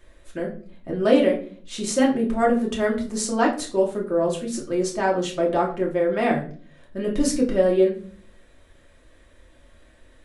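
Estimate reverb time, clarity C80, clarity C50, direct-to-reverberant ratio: 0.45 s, 14.0 dB, 9.0 dB, −2.5 dB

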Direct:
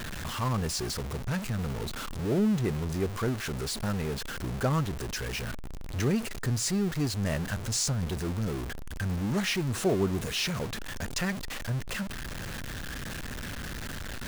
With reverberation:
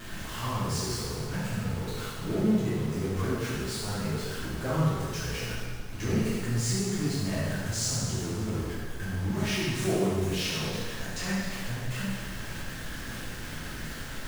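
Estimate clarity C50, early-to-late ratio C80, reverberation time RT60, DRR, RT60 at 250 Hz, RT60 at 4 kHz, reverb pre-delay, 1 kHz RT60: −2.5 dB, 0.0 dB, 1.7 s, −9.5 dB, 1.7 s, 1.6 s, 5 ms, 1.7 s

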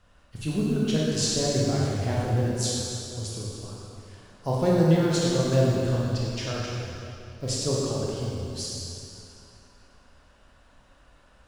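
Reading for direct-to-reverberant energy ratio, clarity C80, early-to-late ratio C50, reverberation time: −5.5 dB, −1.0 dB, −3.0 dB, 2.8 s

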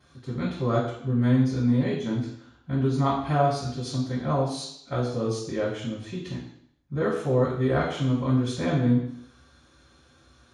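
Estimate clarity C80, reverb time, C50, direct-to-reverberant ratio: 6.5 dB, 0.70 s, 3.5 dB, −15.5 dB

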